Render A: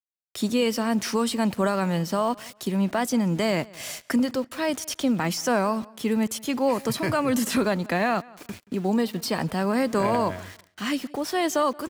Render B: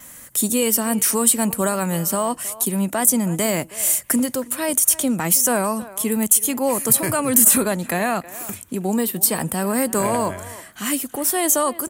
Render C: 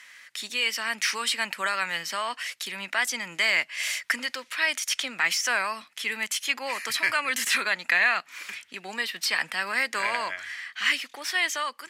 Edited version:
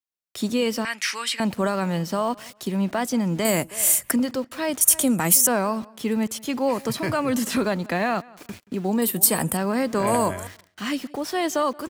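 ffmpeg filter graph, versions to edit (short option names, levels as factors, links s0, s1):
-filter_complex "[1:a]asplit=4[s0][s1][s2][s3];[0:a]asplit=6[s4][s5][s6][s7][s8][s9];[s4]atrim=end=0.852[s10];[2:a]atrim=start=0.848:end=1.402[s11];[s5]atrim=start=1.398:end=3.452[s12];[s0]atrim=start=3.448:end=4.112[s13];[s6]atrim=start=4.108:end=4.812[s14];[s1]atrim=start=4.808:end=5.472[s15];[s7]atrim=start=5.468:end=9.022[s16];[s2]atrim=start=9.018:end=9.572[s17];[s8]atrim=start=9.568:end=10.072[s18];[s3]atrim=start=10.068:end=10.472[s19];[s9]atrim=start=10.468[s20];[s10][s11]acrossfade=d=0.004:c1=hsin:c2=hsin[s21];[s21][s12]acrossfade=d=0.004:c1=hsin:c2=hsin[s22];[s22][s13]acrossfade=d=0.004:c1=hsin:c2=hsin[s23];[s23][s14]acrossfade=d=0.004:c1=hsin:c2=hsin[s24];[s24][s15]acrossfade=d=0.004:c1=hsin:c2=hsin[s25];[s25][s16]acrossfade=d=0.004:c1=hsin:c2=hsin[s26];[s26][s17]acrossfade=d=0.004:c1=hsin:c2=hsin[s27];[s27][s18]acrossfade=d=0.004:c1=hsin:c2=hsin[s28];[s28][s19]acrossfade=d=0.004:c1=hsin:c2=hsin[s29];[s29][s20]acrossfade=d=0.004:c1=hsin:c2=hsin"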